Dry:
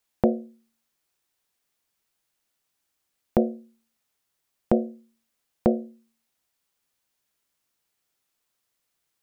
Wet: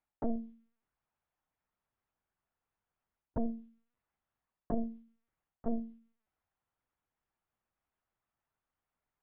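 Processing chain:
low-pass that shuts in the quiet parts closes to 1,200 Hz, open at −21 dBFS
parametric band 400 Hz −10 dB 0.78 octaves
reversed playback
downward compressor 12 to 1, threshold −29 dBFS, peak gain reduction 13 dB
reversed playback
linear-prediction vocoder at 8 kHz pitch kept

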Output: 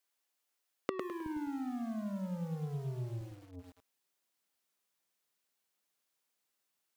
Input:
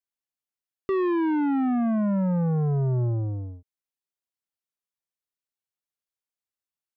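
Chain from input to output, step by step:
gate with flip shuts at −32 dBFS, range −26 dB
high-pass filter 350 Hz 12 dB per octave, from 0:01.26 63 Hz, from 0:03.21 170 Hz
feedback echo at a low word length 104 ms, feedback 35%, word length 11 bits, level −5 dB
level +10 dB

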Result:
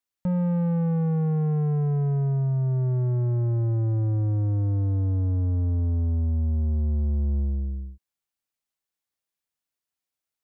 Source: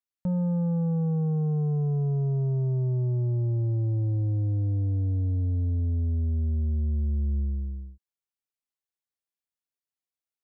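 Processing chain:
notch filter 400 Hz, Q 12
in parallel at −3 dB: soft clipping −32.5 dBFS, distortion −14 dB

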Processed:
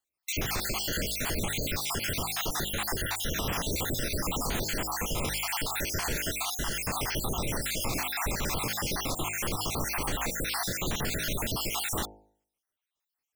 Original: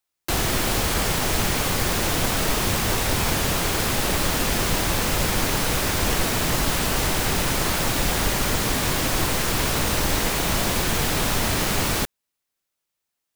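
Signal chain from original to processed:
time-frequency cells dropped at random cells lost 61%
hum removal 52.54 Hz, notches 17
brickwall limiter −19 dBFS, peak gain reduction 7.5 dB
level −2 dB

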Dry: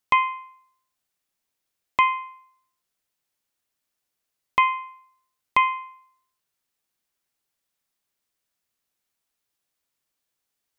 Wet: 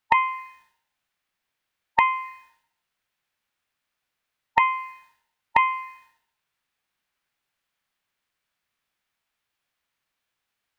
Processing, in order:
tilt shelving filter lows −7.5 dB, about 740 Hz
in parallel at −1 dB: downward compressor, threshold −22 dBFS, peak gain reduction 11.5 dB
on the sum: formants moved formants −2 semitones
bass and treble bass +8 dB, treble −15 dB
level −3.5 dB

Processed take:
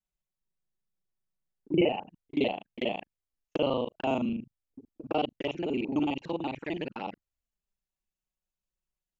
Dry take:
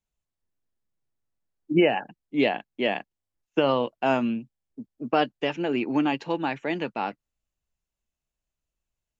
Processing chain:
reversed piece by piece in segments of 37 ms
flanger swept by the level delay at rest 5.4 ms, full sweep at −24 dBFS
level −3.5 dB

